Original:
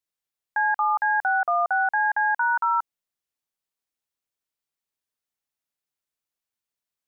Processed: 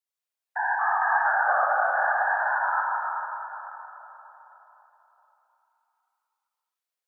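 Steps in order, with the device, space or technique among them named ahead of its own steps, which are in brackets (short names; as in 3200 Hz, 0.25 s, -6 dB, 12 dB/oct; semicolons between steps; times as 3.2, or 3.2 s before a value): 1.76–2.78 expander -18 dBFS; whispering ghost (whisperiser; HPF 470 Hz 24 dB/oct; reverb RT60 4.2 s, pre-delay 55 ms, DRR -3 dB); gain -4.5 dB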